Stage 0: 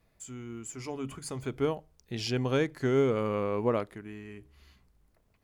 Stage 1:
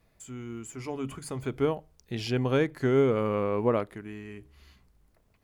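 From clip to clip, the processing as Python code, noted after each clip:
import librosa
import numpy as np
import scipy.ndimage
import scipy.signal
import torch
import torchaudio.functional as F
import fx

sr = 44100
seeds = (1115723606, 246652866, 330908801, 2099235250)

y = fx.dynamic_eq(x, sr, hz=6000.0, q=0.94, threshold_db=-54.0, ratio=4.0, max_db=-7)
y = y * 10.0 ** (2.5 / 20.0)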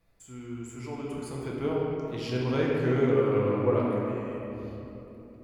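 y = fx.room_shoebox(x, sr, seeds[0], volume_m3=170.0, walls='hard', distance_m=0.72)
y = fx.doppler_dist(y, sr, depth_ms=0.1)
y = y * 10.0 ** (-6.0 / 20.0)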